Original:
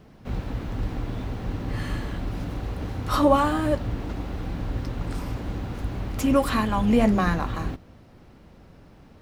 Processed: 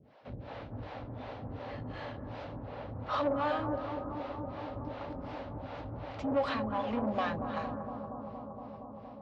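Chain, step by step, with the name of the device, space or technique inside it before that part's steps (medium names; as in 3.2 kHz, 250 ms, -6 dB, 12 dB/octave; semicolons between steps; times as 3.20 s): 2.60–3.18 s: low-pass 3.2 kHz 6 dB/octave; guitar amplifier with harmonic tremolo (harmonic tremolo 2.7 Hz, depth 100%, crossover 410 Hz; saturation -25 dBFS, distortion -10 dB; cabinet simulation 110–4400 Hz, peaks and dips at 180 Hz -8 dB, 350 Hz -5 dB, 580 Hz +9 dB, 850 Hz +4 dB); bucket-brigade echo 233 ms, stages 2048, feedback 84%, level -9 dB; trim -3.5 dB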